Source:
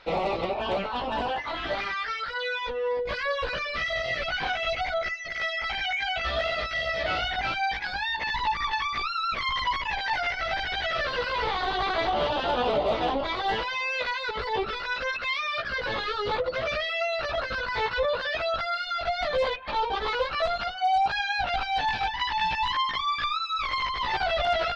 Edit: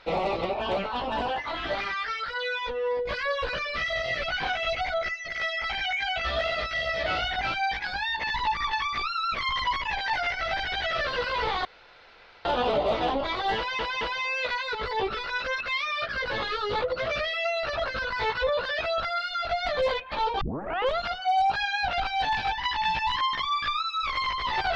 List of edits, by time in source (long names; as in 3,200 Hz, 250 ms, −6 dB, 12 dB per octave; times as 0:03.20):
0:11.65–0:12.45: fill with room tone
0:13.57: stutter 0.22 s, 3 plays
0:19.97: tape start 0.57 s